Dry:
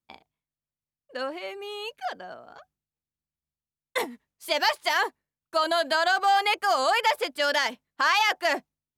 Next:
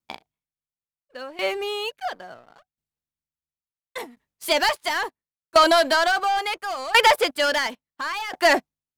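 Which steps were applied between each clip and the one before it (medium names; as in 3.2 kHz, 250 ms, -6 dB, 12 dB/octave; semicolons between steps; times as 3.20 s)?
waveshaping leveller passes 2; sawtooth tremolo in dB decaying 0.72 Hz, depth 19 dB; trim +5 dB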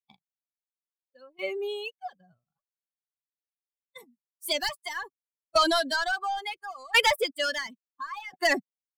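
expander on every frequency bin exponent 2; dynamic bell 870 Hz, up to -7 dB, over -33 dBFS, Q 0.85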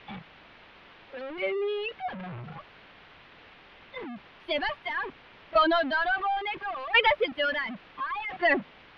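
jump at every zero crossing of -32.5 dBFS; inverse Chebyshev low-pass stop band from 7.3 kHz, stop band 50 dB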